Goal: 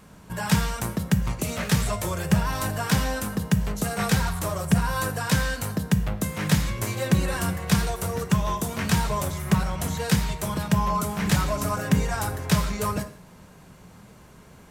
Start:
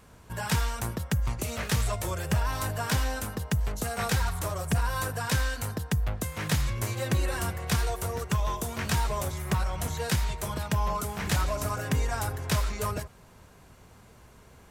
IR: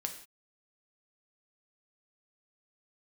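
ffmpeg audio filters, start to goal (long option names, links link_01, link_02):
-filter_complex "[0:a]asplit=2[link_01][link_02];[link_02]equalizer=frequency=180:width_type=o:width=0.99:gain=12[link_03];[1:a]atrim=start_sample=2205,lowshelf=frequency=83:gain=-8[link_04];[link_03][link_04]afir=irnorm=-1:irlink=0,volume=0.5dB[link_05];[link_01][link_05]amix=inputs=2:normalize=0,volume=-2.5dB"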